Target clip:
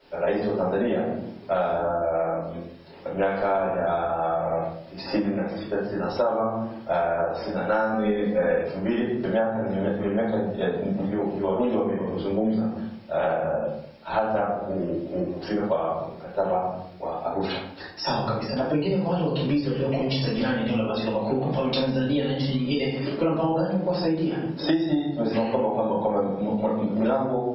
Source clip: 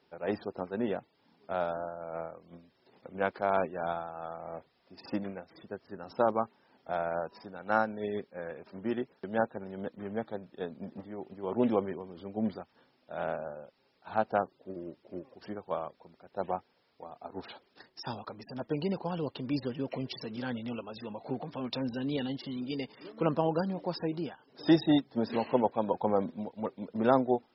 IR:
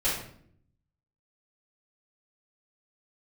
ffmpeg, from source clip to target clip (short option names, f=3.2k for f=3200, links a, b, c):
-filter_complex "[1:a]atrim=start_sample=2205[a];[0:a][a]afir=irnorm=-1:irlink=0,acompressor=threshold=-27dB:ratio=10,asettb=1/sr,asplit=3[b][c][d];[b]atrim=end=7.934[e];[c]atrim=start=7.93:end=8.63,asetpts=PTS-STARTPTS,afade=t=in:d=0.004:c=qsin,afade=t=out:st=0.696:d=0.004:c=qsin,aecho=1:1:4:0.77,atrim=end_sample=30870[f];[d]atrim=start=8.626[g];[e][f]acrossfade=d=0.004:c1=hsin:c2=qsin[h];[h][g]acrossfade=d=0.004:c1=qsin:c2=hsin,volume=6.5dB"